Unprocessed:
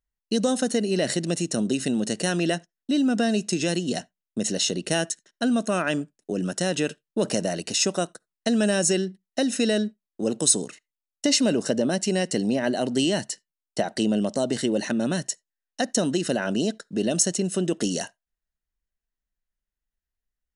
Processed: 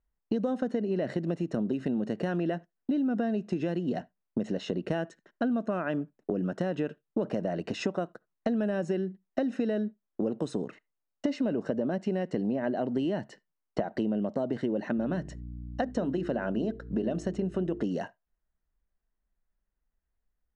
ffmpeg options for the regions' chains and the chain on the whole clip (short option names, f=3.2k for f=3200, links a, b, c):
-filter_complex "[0:a]asettb=1/sr,asplit=3[a][b][c];[a]atrim=end=14.974[d];[b]atrim=start=14.97:end=17.82,asetpts=PTS-STARTPTS,afade=t=in:d=0.004:c=qsin,afade=t=out:st=2.846:d=0.004:c=qsin,bandreject=f=50:t=h:w=6,bandreject=f=100:t=h:w=6,bandreject=f=150:t=h:w=6,bandreject=f=200:t=h:w=6,bandreject=f=250:t=h:w=6,bandreject=f=300:t=h:w=6,bandreject=f=350:t=h:w=6,bandreject=f=400:t=h:w=6,bandreject=f=450:t=h:w=6,aeval=exprs='val(0)+0.00562*(sin(2*PI*60*n/s)+sin(2*PI*2*60*n/s)/2+sin(2*PI*3*60*n/s)/3+sin(2*PI*4*60*n/s)/4+sin(2*PI*5*60*n/s)/5)':c=same[e];[c]atrim=start=17.816[f];[d][e]acrossfade=d=0.004:c1=hsin:c2=qsin[g];[g][f]acrossfade=d=0.004:c1=qsin:c2=hsin,lowpass=1.4k,acompressor=threshold=-35dB:ratio=4,volume=6.5dB"